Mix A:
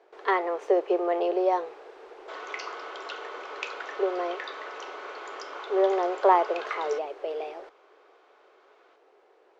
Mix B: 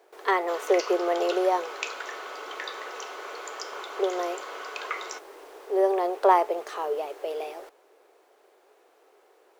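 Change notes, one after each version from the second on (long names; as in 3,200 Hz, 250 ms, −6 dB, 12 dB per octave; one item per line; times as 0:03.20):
background: entry −1.80 s
master: remove high-frequency loss of the air 150 metres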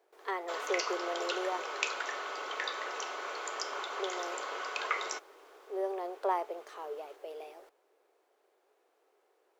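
speech −12.0 dB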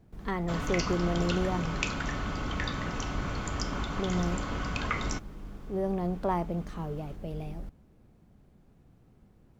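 background: add notch filter 3,900 Hz, Q 28
master: remove elliptic high-pass filter 400 Hz, stop band 50 dB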